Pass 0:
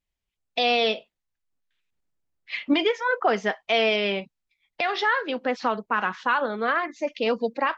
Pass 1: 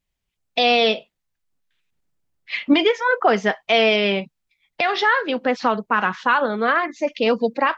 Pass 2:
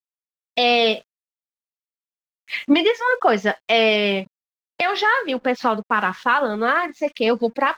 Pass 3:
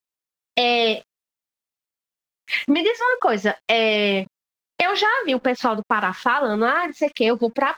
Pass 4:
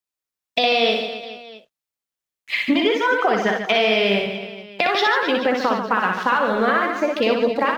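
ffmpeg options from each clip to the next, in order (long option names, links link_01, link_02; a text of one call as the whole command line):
ffmpeg -i in.wav -af "equalizer=frequency=150:width_type=o:width=0.97:gain=4.5,volume=5dB" out.wav
ffmpeg -i in.wav -af "aeval=exprs='sgn(val(0))*max(abs(val(0))-0.00335,0)':channel_layout=same" out.wav
ffmpeg -i in.wav -af "acompressor=threshold=-21dB:ratio=4,volume=5dB" out.wav
ffmpeg -i in.wav -af "aecho=1:1:60|144|261.6|426.2|656.7:0.631|0.398|0.251|0.158|0.1,volume=-1dB" out.wav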